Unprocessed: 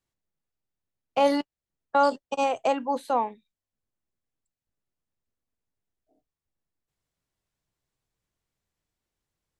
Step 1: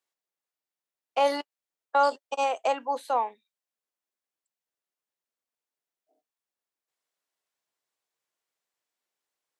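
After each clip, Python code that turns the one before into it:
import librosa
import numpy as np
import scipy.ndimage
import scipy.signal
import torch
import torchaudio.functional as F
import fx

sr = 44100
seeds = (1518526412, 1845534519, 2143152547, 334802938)

y = scipy.signal.sosfilt(scipy.signal.butter(2, 510.0, 'highpass', fs=sr, output='sos'), x)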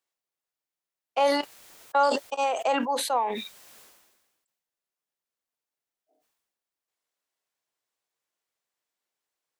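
y = fx.sustainer(x, sr, db_per_s=46.0)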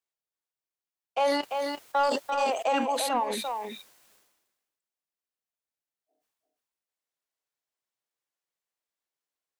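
y = fx.leveller(x, sr, passes=1)
y = y + 10.0 ** (-5.5 / 20.0) * np.pad(y, (int(343 * sr / 1000.0), 0))[:len(y)]
y = F.gain(torch.from_numpy(y), -5.0).numpy()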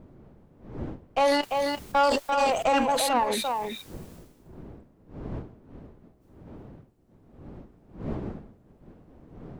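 y = fx.diode_clip(x, sr, knee_db=-24.0)
y = fx.dmg_wind(y, sr, seeds[0], corner_hz=290.0, level_db=-48.0)
y = F.gain(torch.from_numpy(y), 5.0).numpy()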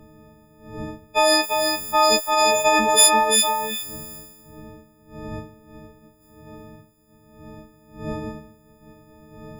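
y = fx.freq_snap(x, sr, grid_st=6)
y = F.gain(torch.from_numpy(y), 2.5).numpy()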